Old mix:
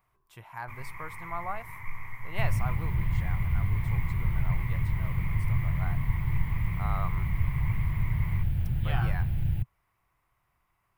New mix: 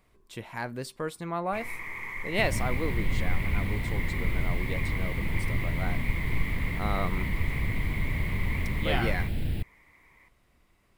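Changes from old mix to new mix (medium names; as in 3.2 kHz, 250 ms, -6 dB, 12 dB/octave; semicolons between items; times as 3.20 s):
speech: add tone controls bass +12 dB, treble 0 dB; first sound: entry +0.85 s; master: add graphic EQ 125/250/500/1000/2000/4000/8000 Hz -9/+12/+12/-4/+5/+11/+9 dB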